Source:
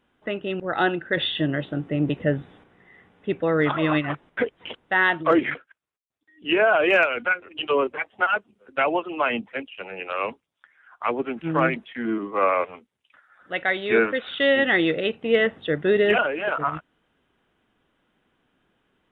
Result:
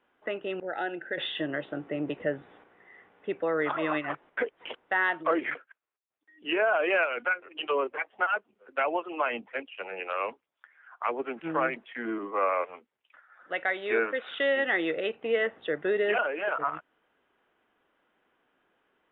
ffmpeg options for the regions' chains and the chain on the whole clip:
ffmpeg -i in.wav -filter_complex "[0:a]asettb=1/sr,asplit=3[link_01][link_02][link_03];[link_01]atrim=end=0.634[link_04];[link_02]atrim=start=0.63:end=1.18,asetpts=PTS-STARTPTS,afade=type=in:duration=0.004:curve=qsin,afade=type=out:start_time=0.546:duration=0.004:curve=qsin,bass=frequency=250:gain=-2,treble=frequency=4000:gain=-6,acompressor=threshold=-32dB:ratio=1.5:attack=3.2:release=140:knee=1:detection=peak,asuperstop=centerf=1100:order=4:qfactor=2.2[link_05];[link_03]atrim=start=1.176[link_06];[link_04][link_05]acrossfade=duration=0.004:curve1=hsin:curve2=qsin[link_07];[link_07][link_06]acrossfade=duration=0.004:curve1=qsin:curve2=hsin,acrossover=split=330 3000:gain=0.178 1 0.158[link_08][link_09][link_10];[link_08][link_09][link_10]amix=inputs=3:normalize=0,acompressor=threshold=-32dB:ratio=1.5" out.wav

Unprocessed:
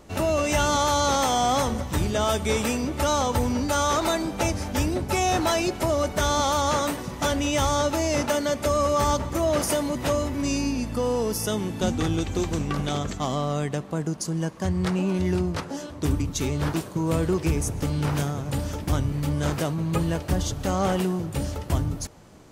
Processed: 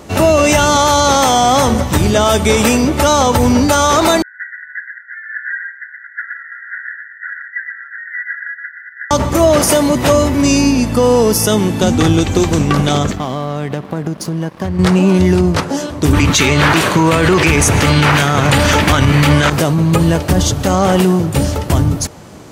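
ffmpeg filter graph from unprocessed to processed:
ffmpeg -i in.wav -filter_complex "[0:a]asettb=1/sr,asplit=3[link_01][link_02][link_03];[link_01]atrim=end=4.224[link_04];[link_02]atrim=start=4.22:end=9.11,asetpts=PTS-STARTPTS,afade=type=in:duration=0.004:curve=qsin,afade=type=out:start_time=4.886:duration=0.004:curve=qsin,afreqshift=-87,asuperpass=centerf=1700:order=20:qfactor=2.9,aecho=1:1:121:0.596,atrim=end_sample=215649[link_05];[link_03]atrim=start=9.106[link_06];[link_04][link_05]acrossfade=duration=0.004:curve1=hsin:curve2=qsin[link_07];[link_07][link_06]acrossfade=duration=0.004:curve1=qsin:curve2=hsin,asettb=1/sr,asplit=3[link_08][link_09][link_10];[link_08]atrim=end=13.114[link_11];[link_09]atrim=start=13.11:end=14.79,asetpts=PTS-STARTPTS,afade=type=in:duration=0.004:curve=qsin,afade=type=out:start_time=1.676:duration=0.004:curve=qsin,equalizer=frequency=7500:width=1.2:gain=-12.5,acompressor=threshold=-29dB:ratio=4:attack=3.2:release=140:knee=1:detection=peak,aeval=exprs='sgn(val(0))*max(abs(val(0))-0.00376,0)':channel_layout=same[link_12];[link_10]atrim=start=14.786[link_13];[link_11][link_12]acrossfade=duration=0.004:curve1=hsin:curve2=qsin[link_14];[link_14][link_13]acrossfade=duration=0.004:curve1=qsin:curve2=hsin,asettb=1/sr,asplit=3[link_15][link_16][link_17];[link_15]atrim=end=16.134[link_18];[link_16]atrim=start=16.13:end=19.5,asetpts=PTS-STARTPTS,afade=type=in:duration=0.004:curve=qsin,afade=type=out:start_time=3.366:duration=0.004:curve=qsin,equalizer=frequency=2100:width_type=o:width=2.6:gain=14.5,acontrast=34,bandreject=frequency=5200:width=21[link_19];[link_17]atrim=start=19.496[link_20];[link_18][link_19]acrossfade=duration=0.004:curve1=hsin:curve2=qsin[link_21];[link_21][link_20]acrossfade=duration=0.004:curve1=qsin:curve2=hsin,highpass=64,alimiter=level_in=15.5dB:limit=-1dB:release=50:level=0:latency=1,volume=-1dB" out.wav

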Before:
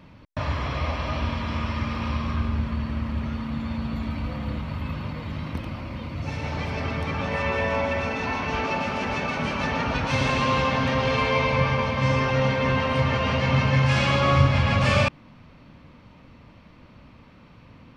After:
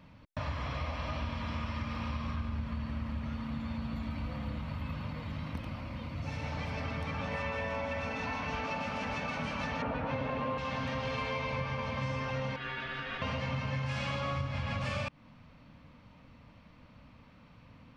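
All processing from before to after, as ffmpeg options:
ffmpeg -i in.wav -filter_complex "[0:a]asettb=1/sr,asplit=3[link_01][link_02][link_03];[link_01]atrim=end=9.824[link_04];[link_02]atrim=start=9.82:end=10.58,asetpts=PTS-STARTPTS,afade=type=in:duration=0.004:curve=qsin,afade=type=out:start_time=0.756:duration=0.004:curve=qsin,lowpass=2600,equalizer=frequency=440:width=0.6:gain=9[link_05];[link_03]atrim=start=10.576[link_06];[link_04][link_05]acrossfade=duration=0.004:curve1=hsin:curve2=qsin[link_07];[link_07][link_06]acrossfade=duration=0.004:curve1=qsin:curve2=hsin,asettb=1/sr,asplit=3[link_08][link_09][link_10];[link_08]atrim=end=12.564[link_11];[link_09]atrim=start=12.56:end=13.22,asetpts=PTS-STARTPTS,afade=type=in:duration=0.004:curve=qsin,afade=type=out:start_time=0.656:duration=0.004:curve=qsin,highpass=730,lowpass=3100,aeval=exprs='val(0)*sin(2*PI*660*n/s)':channel_layout=same[link_12];[link_10]atrim=start=13.216[link_13];[link_11][link_12]acrossfade=duration=0.004:curve1=hsin:curve2=qsin[link_14];[link_14][link_13]acrossfade=duration=0.004:curve1=qsin:curve2=hsin,equalizer=frequency=370:width=7.5:gain=-14.5,acompressor=threshold=-25dB:ratio=6,volume=-6.5dB" out.wav

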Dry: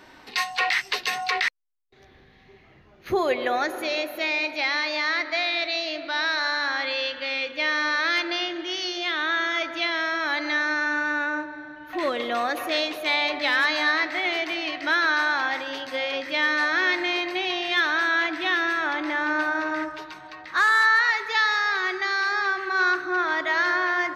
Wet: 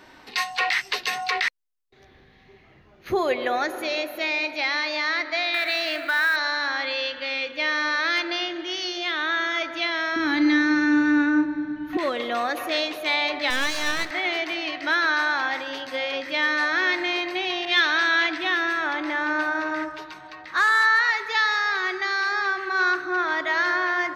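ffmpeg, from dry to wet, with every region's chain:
ffmpeg -i in.wav -filter_complex "[0:a]asettb=1/sr,asplit=3[link_01][link_02][link_03];[link_01]atrim=end=5.544[link_04];[link_02]atrim=start=5.54:end=6.36,asetpts=PTS-STARTPTS,afade=type=in:duration=0.004:curve=qsin,afade=type=out:start_time=0.816:duration=0.004:curve=qsin,equalizer=frequency=1600:width=1.3:gain=13,acompressor=threshold=-20dB:ratio=3:attack=3.2:release=140:knee=1:detection=peak,acrusher=bits=6:mode=log:mix=0:aa=0.000001[link_05];[link_03]atrim=start=6.356[link_06];[link_04][link_05]acrossfade=duration=0.004:curve1=hsin:curve2=qsin[link_07];[link_07][link_06]acrossfade=duration=0.004:curve1=qsin:curve2=hsin,asettb=1/sr,asplit=3[link_08][link_09][link_10];[link_08]atrim=end=10.164[link_11];[link_09]atrim=start=10.16:end=11.97,asetpts=PTS-STARTPTS,afade=type=in:duration=0.004:curve=qsin,afade=type=out:start_time=1.806:duration=0.004:curve=qsin,lowshelf=frequency=370:width_type=q:width=3:gain=9.5,asplit=2[link_12][link_13];[link_13]adelay=34,volume=-12.5dB[link_14];[link_12][link_14]amix=inputs=2:normalize=0,atrim=end_sample=79821[link_15];[link_10]atrim=start=11.966[link_16];[link_11][link_15]acrossfade=duration=0.004:curve1=hsin:curve2=qsin[link_17];[link_17][link_16]acrossfade=duration=0.004:curve1=qsin:curve2=hsin,asettb=1/sr,asplit=3[link_18][link_19][link_20];[link_18]atrim=end=13.504[link_21];[link_19]atrim=start=13.5:end=14.11,asetpts=PTS-STARTPTS,afade=type=in:duration=0.004:curve=qsin,afade=type=out:start_time=0.606:duration=0.004:curve=qsin,highshelf=frequency=7100:gain=12,aeval=exprs='max(val(0),0)':channel_layout=same[link_22];[link_20]atrim=start=14.106[link_23];[link_21][link_22]acrossfade=duration=0.004:curve1=hsin:curve2=qsin[link_24];[link_24][link_23]acrossfade=duration=0.004:curve1=qsin:curve2=hsin,asettb=1/sr,asplit=3[link_25][link_26][link_27];[link_25]atrim=end=17.654[link_28];[link_26]atrim=start=17.65:end=18.38,asetpts=PTS-STARTPTS,afade=type=in:duration=0.004:curve=qsin,afade=type=out:start_time=0.726:duration=0.004:curve=qsin,lowpass=6100,adynamicequalizer=threshold=0.0178:dfrequency=2200:dqfactor=0.7:tfrequency=2200:tqfactor=0.7:attack=5:release=100:ratio=0.375:range=3.5:mode=boostabove:tftype=highshelf[link_29];[link_27]atrim=start=18.376[link_30];[link_28][link_29]acrossfade=duration=0.004:curve1=hsin:curve2=qsin[link_31];[link_31][link_30]acrossfade=duration=0.004:curve1=qsin:curve2=hsin" out.wav

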